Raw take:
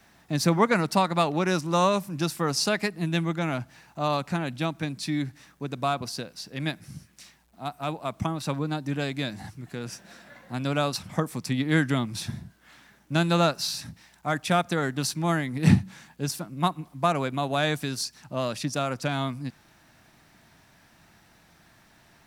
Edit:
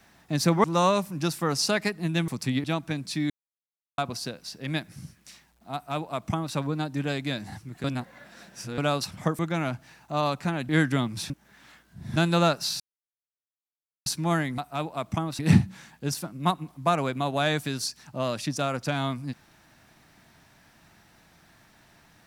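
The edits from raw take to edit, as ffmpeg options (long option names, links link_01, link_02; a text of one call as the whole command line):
ffmpeg -i in.wav -filter_complex "[0:a]asplit=16[link_01][link_02][link_03][link_04][link_05][link_06][link_07][link_08][link_09][link_10][link_11][link_12][link_13][link_14][link_15][link_16];[link_01]atrim=end=0.642[link_17];[link_02]atrim=start=1.618:end=3.262[link_18];[link_03]atrim=start=11.308:end=11.672[link_19];[link_04]atrim=start=4.558:end=5.22,asetpts=PTS-STARTPTS,afade=type=out:start_time=0.658:duration=0.004:curve=hsin[link_20];[link_05]atrim=start=5.22:end=5.9,asetpts=PTS-STARTPTS,volume=0[link_21];[link_06]atrim=start=5.9:end=9.762,asetpts=PTS-STARTPTS,afade=type=in:duration=0.004:curve=hsin[link_22];[link_07]atrim=start=9.758:end=10.702,asetpts=PTS-STARTPTS,areverse[link_23];[link_08]atrim=start=10.698:end=11.312[link_24];[link_09]atrim=start=3.258:end=4.562[link_25];[link_10]atrim=start=11.668:end=12.282[link_26];[link_11]atrim=start=12.278:end=13.142,asetpts=PTS-STARTPTS,areverse[link_27];[link_12]atrim=start=13.138:end=13.78,asetpts=PTS-STARTPTS,afade=type=out:start_time=0.638:duration=0.004:curve=hsin[link_28];[link_13]atrim=start=13.78:end=15.04,asetpts=PTS-STARTPTS,volume=0[link_29];[link_14]atrim=start=15.04:end=15.562,asetpts=PTS-STARTPTS,afade=type=in:duration=0.004:curve=hsin[link_30];[link_15]atrim=start=7.658:end=8.472[link_31];[link_16]atrim=start=15.558[link_32];[link_17][link_18]acrossfade=duration=0.004:curve1=hsin:curve2=hsin[link_33];[link_33][link_19]acrossfade=duration=0.004:curve1=hsin:curve2=hsin[link_34];[link_20][link_21][link_22]concat=n=3:v=0:a=1[link_35];[link_34][link_35]acrossfade=duration=0.004:curve1=hsin:curve2=hsin[link_36];[link_36][link_23]acrossfade=duration=0.004:curve1=hsin:curve2=hsin[link_37];[link_37][link_24]acrossfade=duration=0.004:curve1=hsin:curve2=hsin[link_38];[link_38][link_25]acrossfade=duration=0.004:curve1=hsin:curve2=hsin[link_39];[link_39][link_26]acrossfade=duration=0.004:curve1=hsin:curve2=hsin[link_40];[link_40][link_27]acrossfade=duration=0.004:curve1=hsin:curve2=hsin[link_41];[link_28][link_29][link_30]concat=n=3:v=0:a=1[link_42];[link_41][link_42]acrossfade=duration=0.004:curve1=hsin:curve2=hsin[link_43];[link_43][link_31]acrossfade=duration=0.004:curve1=hsin:curve2=hsin[link_44];[link_44][link_32]acrossfade=duration=0.004:curve1=hsin:curve2=hsin" out.wav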